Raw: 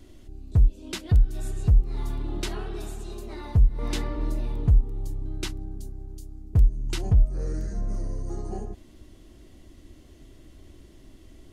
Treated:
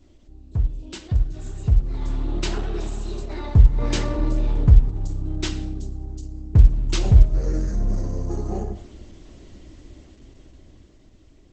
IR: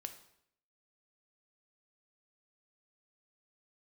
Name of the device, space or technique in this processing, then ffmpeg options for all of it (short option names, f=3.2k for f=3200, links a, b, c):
speakerphone in a meeting room: -filter_complex "[1:a]atrim=start_sample=2205[a];[0:a][a]afir=irnorm=-1:irlink=0,dynaudnorm=f=310:g=13:m=13.5dB" -ar 48000 -c:a libopus -b:a 12k